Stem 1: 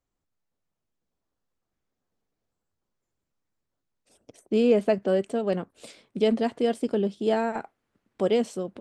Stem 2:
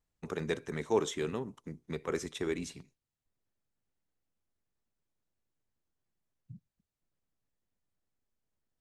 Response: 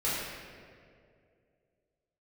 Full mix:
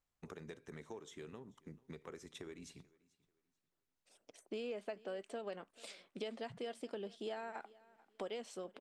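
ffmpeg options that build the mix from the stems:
-filter_complex "[0:a]highpass=f=1.2k:p=1,highshelf=f=6.8k:g=-9,acompressor=threshold=-39dB:ratio=6,volume=-1.5dB,asplit=2[a][b];[b]volume=-22dB[c];[1:a]acompressor=threshold=-39dB:ratio=12,volume=-7dB,asplit=2[d][e];[e]volume=-24dB[f];[c][f]amix=inputs=2:normalize=0,aecho=0:1:438|876|1314|1752:1|0.25|0.0625|0.0156[g];[a][d][g]amix=inputs=3:normalize=0"

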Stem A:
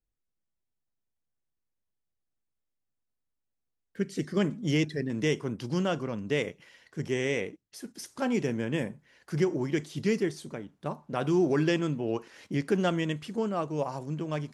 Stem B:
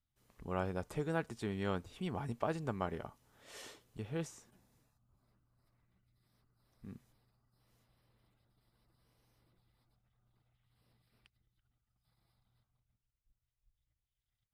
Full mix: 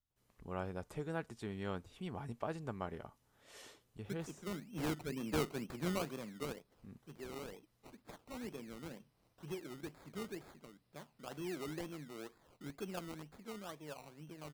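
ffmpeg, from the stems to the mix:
-filter_complex "[0:a]highpass=f=140:w=0.5412,highpass=f=140:w=1.3066,highshelf=f=5.1k:g=11.5,acrusher=samples=21:mix=1:aa=0.000001:lfo=1:lforange=12.6:lforate=2.1,adelay=100,volume=-8.5dB,afade=t=out:st=5.86:d=0.79:silence=0.334965[a];[1:a]volume=-4.5dB,asplit=2[b][c];[c]apad=whole_len=645318[d];[a][d]sidechaincompress=threshold=-47dB:ratio=8:attack=5.6:release=1290[e];[e][b]amix=inputs=2:normalize=0"

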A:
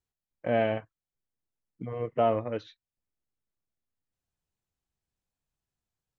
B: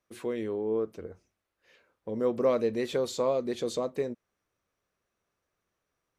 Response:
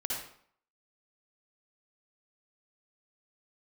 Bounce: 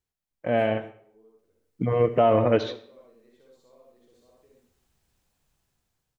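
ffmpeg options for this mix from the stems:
-filter_complex "[0:a]dynaudnorm=f=610:g=5:m=15.5dB,volume=0.5dB,asplit=3[a][b][c];[b]volume=-14dB[d];[1:a]adelay=450,volume=-17dB,asplit=2[e][f];[f]volume=-16.5dB[g];[c]apad=whole_len=292711[h];[e][h]sidechaingate=range=-33dB:threshold=-43dB:ratio=16:detection=peak[i];[2:a]atrim=start_sample=2205[j];[d][g]amix=inputs=2:normalize=0[k];[k][j]afir=irnorm=-1:irlink=0[l];[a][i][l]amix=inputs=3:normalize=0,alimiter=limit=-10dB:level=0:latency=1:release=37"

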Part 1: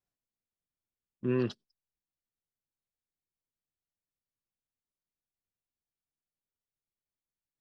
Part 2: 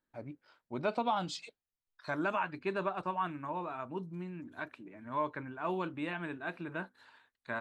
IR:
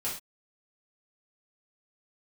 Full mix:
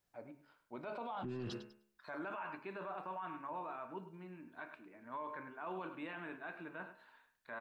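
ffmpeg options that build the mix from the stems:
-filter_complex "[0:a]acontrast=81,alimiter=limit=-15dB:level=0:latency=1,volume=0.5dB,asplit=2[a][b];[b]volume=-23dB[c];[1:a]highpass=f=500:p=1,equalizer=f=6.9k:t=o:w=1.8:g=-13,volume=-2.5dB,asplit=3[d][e][f];[e]volume=-17.5dB[g];[f]volume=-13dB[h];[2:a]atrim=start_sample=2205[i];[g][i]afir=irnorm=-1:irlink=0[j];[c][h]amix=inputs=2:normalize=0,aecho=0:1:104|208|312:1|0.18|0.0324[k];[a][d][j][k]amix=inputs=4:normalize=0,bandreject=f=70.42:t=h:w=4,bandreject=f=140.84:t=h:w=4,bandreject=f=211.26:t=h:w=4,bandreject=f=281.68:t=h:w=4,bandreject=f=352.1:t=h:w=4,bandreject=f=422.52:t=h:w=4,bandreject=f=492.94:t=h:w=4,bandreject=f=563.36:t=h:w=4,bandreject=f=633.78:t=h:w=4,bandreject=f=704.2:t=h:w=4,bandreject=f=774.62:t=h:w=4,bandreject=f=845.04:t=h:w=4,bandreject=f=915.46:t=h:w=4,bandreject=f=985.88:t=h:w=4,bandreject=f=1.0563k:t=h:w=4,bandreject=f=1.12672k:t=h:w=4,bandreject=f=1.19714k:t=h:w=4,bandreject=f=1.26756k:t=h:w=4,bandreject=f=1.33798k:t=h:w=4,bandreject=f=1.4084k:t=h:w=4,bandreject=f=1.47882k:t=h:w=4,bandreject=f=1.54924k:t=h:w=4,bandreject=f=1.61966k:t=h:w=4,bandreject=f=1.69008k:t=h:w=4,bandreject=f=1.7605k:t=h:w=4,bandreject=f=1.83092k:t=h:w=4,bandreject=f=1.90134k:t=h:w=4,bandreject=f=1.97176k:t=h:w=4,bandreject=f=2.04218k:t=h:w=4,bandreject=f=2.1126k:t=h:w=4,bandreject=f=2.18302k:t=h:w=4,bandreject=f=2.25344k:t=h:w=4,bandreject=f=2.32386k:t=h:w=4,bandreject=f=2.39428k:t=h:w=4,bandreject=f=2.4647k:t=h:w=4,bandreject=f=2.53512k:t=h:w=4,bandreject=f=2.60554k:t=h:w=4,bandreject=f=2.67596k:t=h:w=4,bandreject=f=2.74638k:t=h:w=4,bandreject=f=2.8168k:t=h:w=4,alimiter=level_in=11.5dB:limit=-24dB:level=0:latency=1:release=12,volume=-11.5dB"

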